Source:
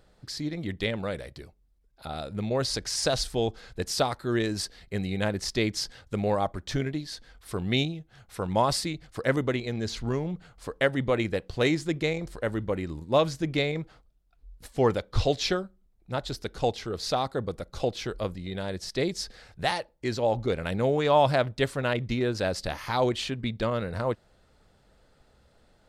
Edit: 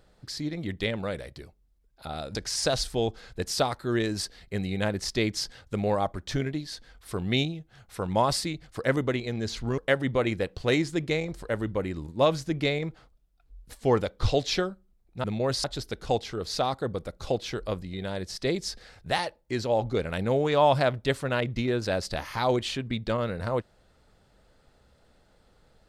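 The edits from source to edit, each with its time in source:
2.35–2.75 move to 16.17
10.18–10.71 cut

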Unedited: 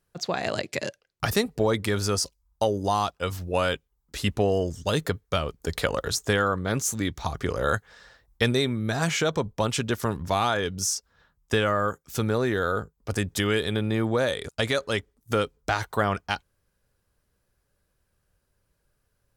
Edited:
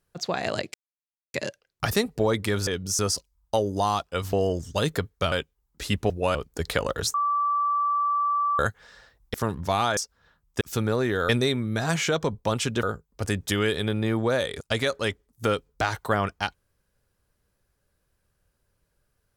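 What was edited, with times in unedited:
0.74 insert silence 0.60 s
3.41–3.66 swap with 4.44–5.43
6.22–7.67 bleep 1160 Hz -21 dBFS
8.42–9.96 move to 12.71
10.59–10.91 move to 2.07
11.55–12.03 cut

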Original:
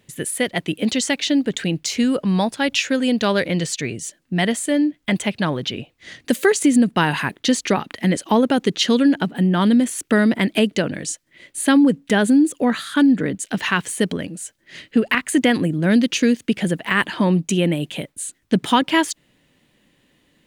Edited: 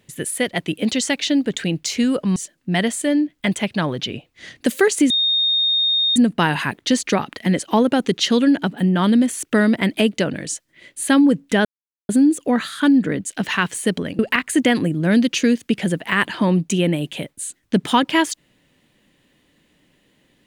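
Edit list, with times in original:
2.36–4 cut
6.74 add tone 3690 Hz -15 dBFS 1.06 s
12.23 insert silence 0.44 s
14.33–14.98 cut

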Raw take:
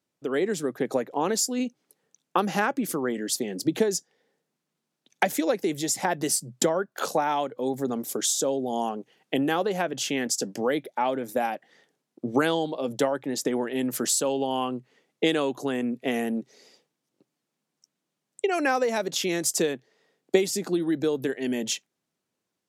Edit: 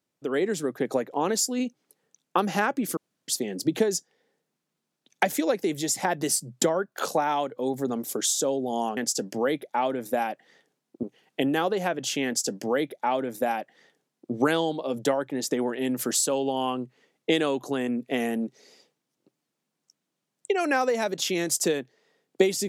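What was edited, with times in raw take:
2.97–3.28 room tone
10.2–12.26 copy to 8.97

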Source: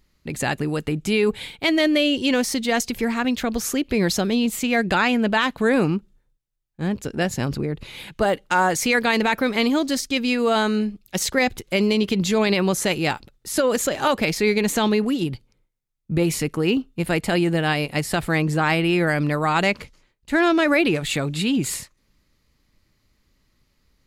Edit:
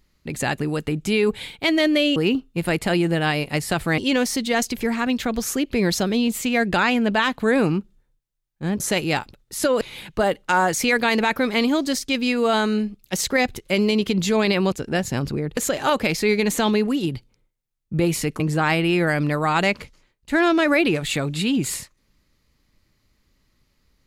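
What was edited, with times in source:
6.98–7.83 swap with 12.74–13.75
16.58–18.4 move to 2.16

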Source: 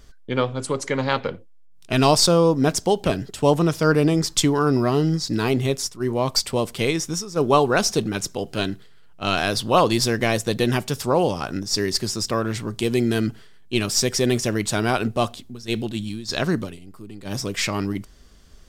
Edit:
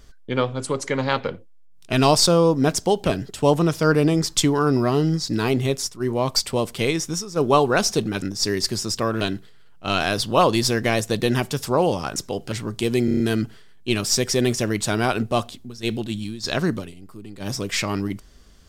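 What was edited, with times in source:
8.22–8.58 swap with 11.53–12.52
13.05 stutter 0.03 s, 6 plays

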